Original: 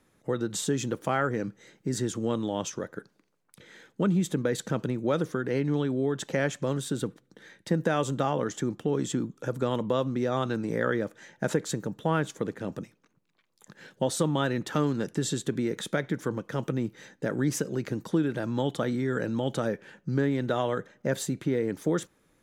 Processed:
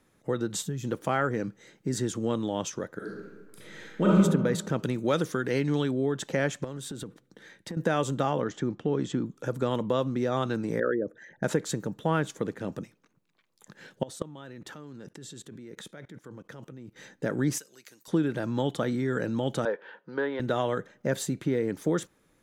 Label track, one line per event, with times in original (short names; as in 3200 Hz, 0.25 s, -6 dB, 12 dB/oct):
0.620000	0.840000	spectral gain 200–11000 Hz -11 dB
2.970000	4.160000	reverb throw, RT60 1.3 s, DRR -5.5 dB
4.830000	5.910000	high shelf 2000 Hz +8 dB
6.640000	7.770000	compressor 5:1, threshold -34 dBFS
8.410000	9.260000	air absorption 110 m
10.800000	11.430000	formant sharpening exponent 2
14.030000	16.960000	level quantiser steps of 22 dB
17.580000	18.080000	differentiator
19.650000	20.400000	speaker cabinet 450–3800 Hz, peaks and dips at 480 Hz +7 dB, 950 Hz +9 dB, 1500 Hz +5 dB, 2400 Hz -4 dB, 3400 Hz +3 dB